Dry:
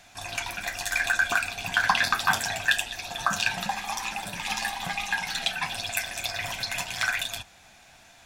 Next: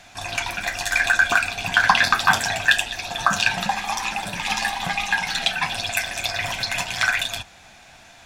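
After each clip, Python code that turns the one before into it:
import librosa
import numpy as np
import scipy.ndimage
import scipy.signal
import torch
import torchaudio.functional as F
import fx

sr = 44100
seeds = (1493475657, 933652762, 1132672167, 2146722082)

y = fx.high_shelf(x, sr, hz=10000.0, db=-9.0)
y = y * 10.0 ** (6.5 / 20.0)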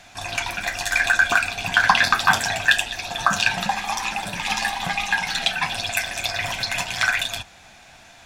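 y = x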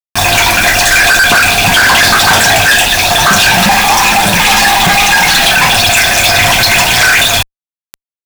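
y = fx.quant_dither(x, sr, seeds[0], bits=6, dither='none')
y = fx.fuzz(y, sr, gain_db=35.0, gate_db=-35.0)
y = y * 10.0 ** (8.0 / 20.0)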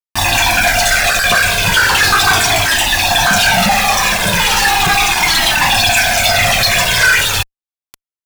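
y = fx.comb_cascade(x, sr, direction='falling', hz=0.37)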